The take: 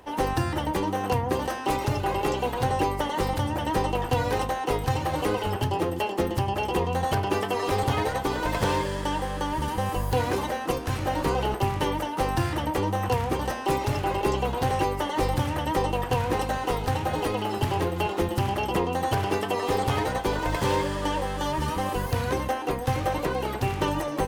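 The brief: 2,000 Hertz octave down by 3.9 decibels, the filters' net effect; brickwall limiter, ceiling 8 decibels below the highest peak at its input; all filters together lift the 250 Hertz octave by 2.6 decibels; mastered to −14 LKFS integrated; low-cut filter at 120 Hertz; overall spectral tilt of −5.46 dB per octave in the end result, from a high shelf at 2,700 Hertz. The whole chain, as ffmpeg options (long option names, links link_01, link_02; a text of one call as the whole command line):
ffmpeg -i in.wav -af "highpass=120,equalizer=frequency=250:width_type=o:gain=4,equalizer=frequency=2000:width_type=o:gain=-3.5,highshelf=frequency=2700:gain=-4,volume=15dB,alimiter=limit=-4dB:level=0:latency=1" out.wav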